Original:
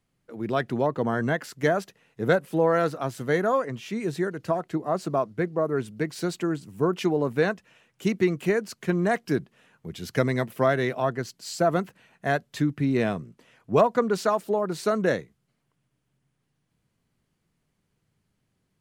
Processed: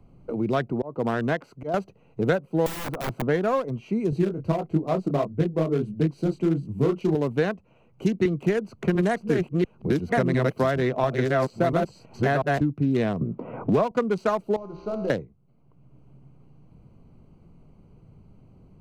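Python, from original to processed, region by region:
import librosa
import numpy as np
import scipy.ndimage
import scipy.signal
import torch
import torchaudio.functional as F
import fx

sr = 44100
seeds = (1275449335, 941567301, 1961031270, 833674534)

y = fx.chain(x, sr, fx.low_shelf(hz=220.0, db=-7.0),
    fx.auto_swell(attack_ms=265.0), at=(0.72, 1.74))
y = fx.chain(y, sr, fx.overflow_wrap(gain_db=26.0),
    fx.high_shelf(hz=11000.0, db=12.0), at=(2.66, 3.22))
y = fx.chain(y, sr, fx.low_shelf(hz=450.0, db=9.5),
    fx.detune_double(cents=53), at=(4.1, 7.15))
y = fx.chain(y, sr, fx.reverse_delay(ms=695, wet_db=-1.5),
    fx.band_squash(depth_pct=70), at=(8.25, 12.61))
y = fx.chain(y, sr, fx.lowpass(hz=1800.0, slope=12),
    fx.band_squash(depth_pct=70), at=(13.21, 13.91))
y = fx.chain(y, sr, fx.cvsd(bps=32000),
    fx.hum_notches(base_hz=60, count=8),
    fx.comb_fb(f0_hz=65.0, decay_s=1.3, harmonics='all', damping=0.0, mix_pct=80), at=(14.56, 15.1))
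y = fx.wiener(y, sr, points=25)
y = fx.low_shelf(y, sr, hz=64.0, db=10.0)
y = fx.band_squash(y, sr, depth_pct=70)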